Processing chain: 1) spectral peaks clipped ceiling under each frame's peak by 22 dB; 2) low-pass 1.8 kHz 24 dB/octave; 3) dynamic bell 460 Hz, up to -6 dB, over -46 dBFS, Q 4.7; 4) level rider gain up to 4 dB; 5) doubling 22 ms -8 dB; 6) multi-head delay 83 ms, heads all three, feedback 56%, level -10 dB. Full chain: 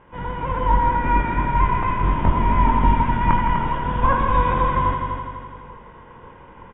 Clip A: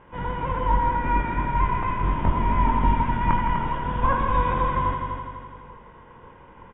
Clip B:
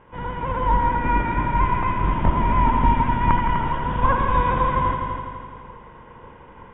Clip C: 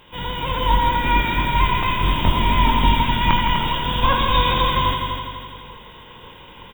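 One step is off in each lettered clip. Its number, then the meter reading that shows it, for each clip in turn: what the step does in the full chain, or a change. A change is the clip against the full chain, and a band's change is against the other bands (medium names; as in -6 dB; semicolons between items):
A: 4, momentary loudness spread change -1 LU; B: 5, crest factor change +1.5 dB; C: 2, 2 kHz band +5.0 dB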